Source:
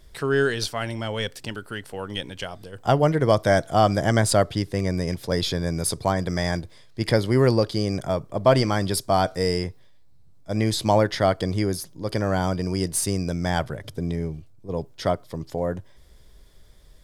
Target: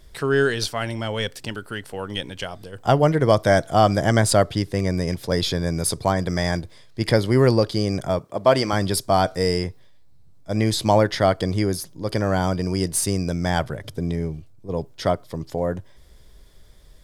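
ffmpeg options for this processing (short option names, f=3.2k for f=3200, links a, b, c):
-filter_complex "[0:a]asettb=1/sr,asplit=3[a][b][c];[a]atrim=end=8.194[d];[b]atrim=start=8.19:end=8.73,asetpts=PTS-STARTPTS,afade=t=in:d=0.004:c=qsin,afade=t=out:st=0.536:d=0.004:c=qsin,highpass=f=280:p=1[e];[c]atrim=start=8.726[f];[d][e]acrossfade=d=0.004:c1=hsin:c2=qsin[g];[g][f]acrossfade=d=0.004:c1=qsin:c2=hsin,volume=2dB"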